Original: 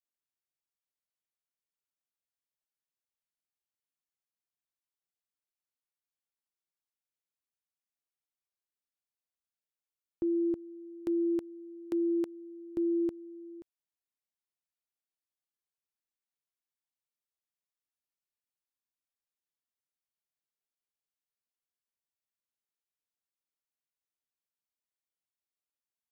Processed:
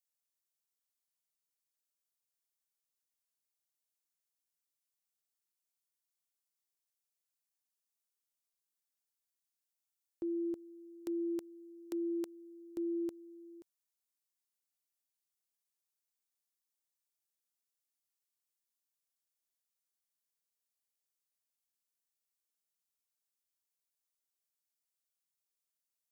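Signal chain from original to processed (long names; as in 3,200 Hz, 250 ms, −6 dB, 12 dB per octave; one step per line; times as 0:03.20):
bass and treble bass −8 dB, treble +11 dB
level −5 dB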